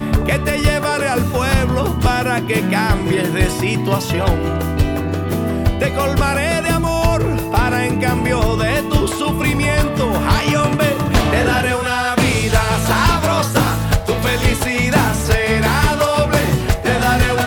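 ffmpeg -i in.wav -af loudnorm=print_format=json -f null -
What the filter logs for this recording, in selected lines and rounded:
"input_i" : "-16.3",
"input_tp" : "-2.2",
"input_lra" : "1.8",
"input_thresh" : "-26.3",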